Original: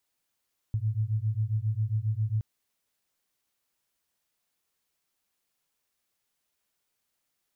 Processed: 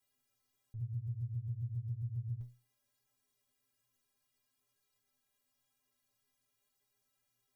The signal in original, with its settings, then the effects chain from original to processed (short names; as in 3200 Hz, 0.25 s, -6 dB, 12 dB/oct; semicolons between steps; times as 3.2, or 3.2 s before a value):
beating tones 105 Hz, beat 7.4 Hz, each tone -28.5 dBFS 1.67 s
low shelf 270 Hz +7 dB; negative-ratio compressor -31 dBFS, ratio -1; metallic resonator 120 Hz, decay 0.35 s, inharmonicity 0.03